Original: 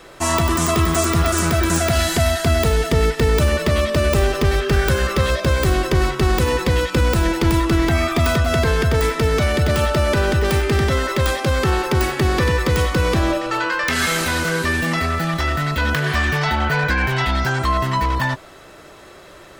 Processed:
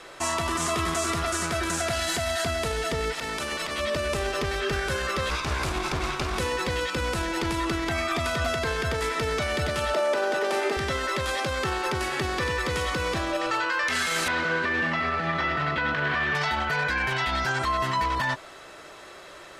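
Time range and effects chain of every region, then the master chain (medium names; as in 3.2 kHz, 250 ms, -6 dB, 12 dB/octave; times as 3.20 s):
3.12–3.79 s: spectral peaks clipped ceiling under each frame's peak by 16 dB + compression 16:1, threshold -23 dBFS
5.29–6.38 s: comb filter that takes the minimum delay 0.82 ms + doubling 49 ms -13 dB + loudspeaker Doppler distortion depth 0.31 ms
9.94–10.77 s: high-pass 240 Hz 24 dB/octave + peaking EQ 660 Hz +8 dB 1.3 oct + doubling 41 ms -11 dB
14.28–16.35 s: band-pass 100–2800 Hz + two-band feedback delay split 1.3 kHz, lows 204 ms, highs 106 ms, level -8.5 dB
whole clip: Bessel low-pass 10 kHz, order 8; bass shelf 360 Hz -11 dB; peak limiter -17.5 dBFS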